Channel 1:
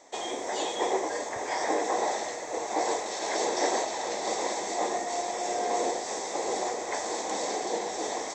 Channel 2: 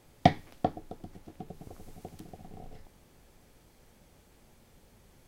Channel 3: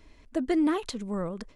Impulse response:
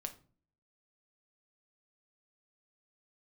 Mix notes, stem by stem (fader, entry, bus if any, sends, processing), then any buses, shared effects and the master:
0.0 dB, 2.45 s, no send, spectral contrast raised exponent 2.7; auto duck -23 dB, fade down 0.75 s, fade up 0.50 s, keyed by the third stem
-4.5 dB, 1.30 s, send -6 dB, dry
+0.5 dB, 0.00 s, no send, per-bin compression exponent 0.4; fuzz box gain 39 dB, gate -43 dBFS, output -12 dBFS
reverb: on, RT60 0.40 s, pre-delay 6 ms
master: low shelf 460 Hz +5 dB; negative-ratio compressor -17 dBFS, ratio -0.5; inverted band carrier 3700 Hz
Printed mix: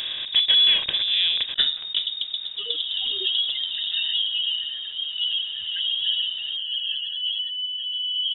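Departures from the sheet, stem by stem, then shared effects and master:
stem 2 -4.5 dB -> +7.0 dB; stem 3: missing fuzz box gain 39 dB, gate -43 dBFS, output -12 dBFS

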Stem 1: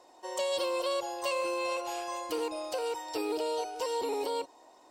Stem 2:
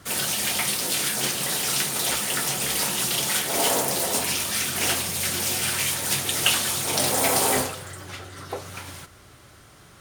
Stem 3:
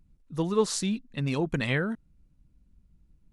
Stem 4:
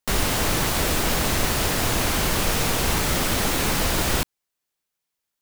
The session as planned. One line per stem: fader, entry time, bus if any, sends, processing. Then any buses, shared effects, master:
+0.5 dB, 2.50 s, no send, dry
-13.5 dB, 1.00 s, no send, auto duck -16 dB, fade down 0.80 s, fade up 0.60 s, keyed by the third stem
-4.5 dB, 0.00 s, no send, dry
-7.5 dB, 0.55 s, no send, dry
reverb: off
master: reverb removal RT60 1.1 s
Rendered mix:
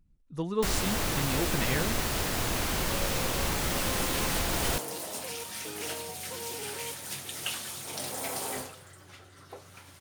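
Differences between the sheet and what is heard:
stem 1 +0.5 dB -> -10.0 dB; master: missing reverb removal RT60 1.1 s

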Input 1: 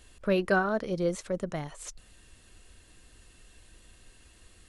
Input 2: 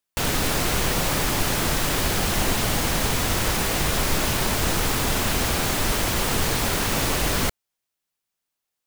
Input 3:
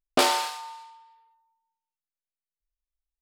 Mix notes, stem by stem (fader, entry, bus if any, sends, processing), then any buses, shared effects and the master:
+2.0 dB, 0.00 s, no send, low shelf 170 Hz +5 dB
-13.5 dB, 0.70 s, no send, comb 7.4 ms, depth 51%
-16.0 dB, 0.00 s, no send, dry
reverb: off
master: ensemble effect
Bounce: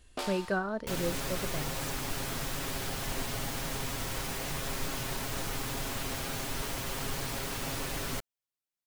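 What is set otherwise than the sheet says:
stem 1 +2.0 dB -> -6.5 dB; master: missing ensemble effect

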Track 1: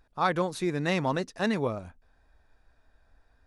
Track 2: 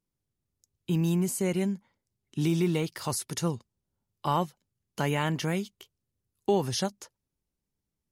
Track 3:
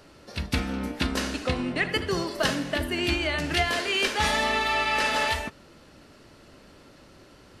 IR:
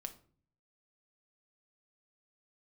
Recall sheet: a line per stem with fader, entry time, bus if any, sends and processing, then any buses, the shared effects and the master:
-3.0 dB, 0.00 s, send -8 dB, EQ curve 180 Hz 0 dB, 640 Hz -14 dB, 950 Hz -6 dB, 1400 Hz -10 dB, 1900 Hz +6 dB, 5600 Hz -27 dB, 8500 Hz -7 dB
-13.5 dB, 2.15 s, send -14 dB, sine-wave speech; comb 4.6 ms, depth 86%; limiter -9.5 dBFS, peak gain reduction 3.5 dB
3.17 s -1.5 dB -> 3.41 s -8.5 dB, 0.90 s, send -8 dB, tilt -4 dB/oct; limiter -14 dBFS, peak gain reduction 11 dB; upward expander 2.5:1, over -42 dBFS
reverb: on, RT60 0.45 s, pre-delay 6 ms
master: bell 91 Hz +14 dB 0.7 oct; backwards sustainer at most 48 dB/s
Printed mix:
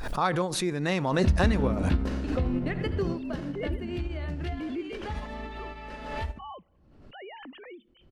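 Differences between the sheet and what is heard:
stem 1: missing EQ curve 180 Hz 0 dB, 640 Hz -14 dB, 950 Hz -6 dB, 1400 Hz -10 dB, 1900 Hz +6 dB, 5600 Hz -27 dB, 8500 Hz -7 dB; stem 2: missing comb 4.6 ms, depth 86%; master: missing bell 91 Hz +14 dB 0.7 oct

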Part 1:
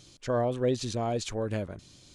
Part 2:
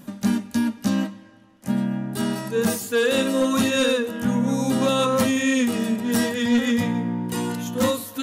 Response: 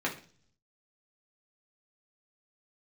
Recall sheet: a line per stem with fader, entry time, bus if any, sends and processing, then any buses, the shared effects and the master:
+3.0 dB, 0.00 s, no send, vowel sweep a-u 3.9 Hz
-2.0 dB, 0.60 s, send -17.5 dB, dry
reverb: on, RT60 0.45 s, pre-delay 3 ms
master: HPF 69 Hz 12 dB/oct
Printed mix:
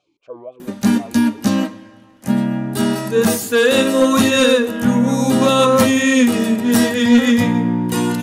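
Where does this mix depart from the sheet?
stem 2 -2.0 dB -> +6.0 dB; master: missing HPF 69 Hz 12 dB/oct

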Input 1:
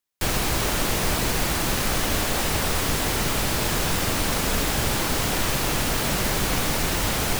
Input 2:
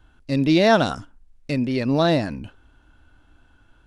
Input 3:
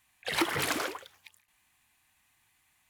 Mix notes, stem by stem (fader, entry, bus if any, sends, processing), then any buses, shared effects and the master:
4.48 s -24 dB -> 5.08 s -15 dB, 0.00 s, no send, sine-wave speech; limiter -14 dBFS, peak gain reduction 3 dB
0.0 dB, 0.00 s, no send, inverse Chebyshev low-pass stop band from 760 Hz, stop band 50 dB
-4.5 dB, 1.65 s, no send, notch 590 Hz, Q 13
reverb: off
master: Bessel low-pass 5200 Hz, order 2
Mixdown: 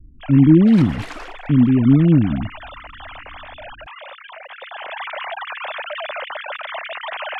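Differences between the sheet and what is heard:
stem 1 -24.0 dB -> -14.0 dB; stem 2 0.0 dB -> +11.0 dB; stem 3: entry 1.65 s -> 0.40 s

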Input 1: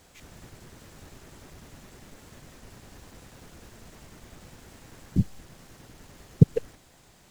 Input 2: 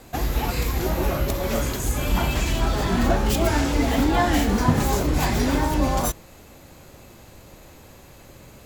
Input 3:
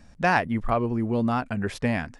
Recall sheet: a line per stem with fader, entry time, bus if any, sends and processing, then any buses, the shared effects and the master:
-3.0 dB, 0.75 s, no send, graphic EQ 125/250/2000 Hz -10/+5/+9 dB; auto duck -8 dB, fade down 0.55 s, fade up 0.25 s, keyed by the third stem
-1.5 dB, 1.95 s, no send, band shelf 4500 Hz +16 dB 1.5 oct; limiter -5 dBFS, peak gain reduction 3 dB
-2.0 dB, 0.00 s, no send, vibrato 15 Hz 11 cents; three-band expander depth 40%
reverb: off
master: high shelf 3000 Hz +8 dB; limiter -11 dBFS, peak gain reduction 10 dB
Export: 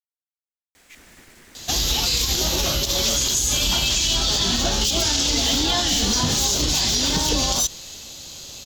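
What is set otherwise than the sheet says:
stem 2: entry 1.95 s -> 1.55 s; stem 3: muted

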